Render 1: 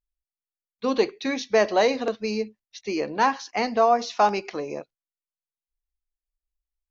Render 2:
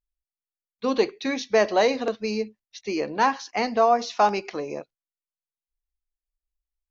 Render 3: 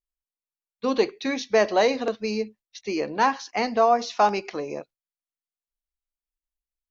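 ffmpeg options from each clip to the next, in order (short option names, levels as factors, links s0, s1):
-af anull
-af "agate=range=0.447:threshold=0.00355:ratio=16:detection=peak"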